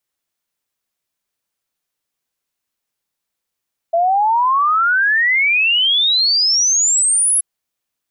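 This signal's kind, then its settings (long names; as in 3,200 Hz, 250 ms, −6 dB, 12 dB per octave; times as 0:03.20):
exponential sine sweep 660 Hz → 11,000 Hz 3.48 s −11.5 dBFS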